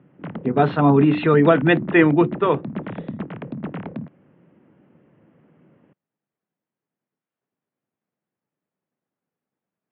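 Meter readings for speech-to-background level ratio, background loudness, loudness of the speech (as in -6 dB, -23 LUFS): 14.5 dB, -32.0 LUFS, -17.5 LUFS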